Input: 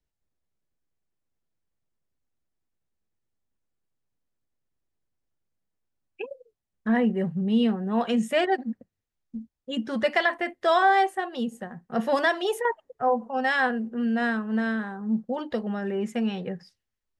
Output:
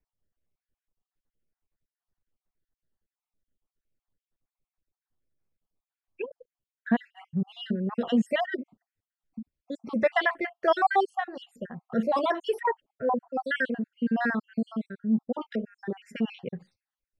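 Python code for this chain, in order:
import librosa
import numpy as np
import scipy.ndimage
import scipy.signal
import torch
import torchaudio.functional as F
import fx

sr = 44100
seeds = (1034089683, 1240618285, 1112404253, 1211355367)

y = fx.spec_dropout(x, sr, seeds[0], share_pct=57)
y = fx.high_shelf(y, sr, hz=4300.0, db=-12.0)
y = F.gain(torch.from_numpy(y), 1.5).numpy()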